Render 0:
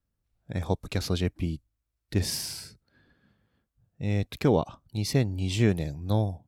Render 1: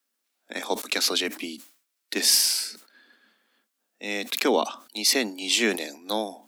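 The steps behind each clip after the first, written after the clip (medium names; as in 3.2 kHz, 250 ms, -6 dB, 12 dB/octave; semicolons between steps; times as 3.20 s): steep high-pass 220 Hz 72 dB/octave; tilt shelf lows -7.5 dB; decay stretcher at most 130 dB/s; trim +6 dB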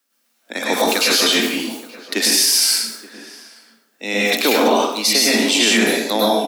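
echo from a far wall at 150 m, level -20 dB; plate-style reverb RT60 0.69 s, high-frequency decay 0.85×, pre-delay 90 ms, DRR -6 dB; peak limiter -12 dBFS, peak gain reduction 10.5 dB; trim +6.5 dB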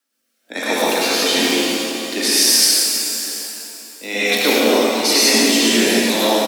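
rotary cabinet horn 1.1 Hz; delay 674 ms -17 dB; pitch-shifted reverb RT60 2.4 s, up +7 st, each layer -8 dB, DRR -1.5 dB; trim -1 dB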